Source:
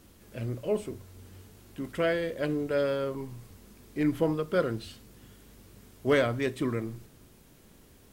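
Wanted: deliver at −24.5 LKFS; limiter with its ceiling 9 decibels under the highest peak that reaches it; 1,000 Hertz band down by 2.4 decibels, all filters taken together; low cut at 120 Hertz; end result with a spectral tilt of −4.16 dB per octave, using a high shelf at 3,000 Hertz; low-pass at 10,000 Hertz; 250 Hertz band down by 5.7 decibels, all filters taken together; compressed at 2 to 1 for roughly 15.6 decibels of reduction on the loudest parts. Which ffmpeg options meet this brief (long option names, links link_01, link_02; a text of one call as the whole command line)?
ffmpeg -i in.wav -af "highpass=120,lowpass=10000,equalizer=frequency=250:width_type=o:gain=-7,equalizer=frequency=1000:width_type=o:gain=-5,highshelf=frequency=3000:gain=9,acompressor=threshold=-51dB:ratio=2,volume=24.5dB,alimiter=limit=-12.5dB:level=0:latency=1" out.wav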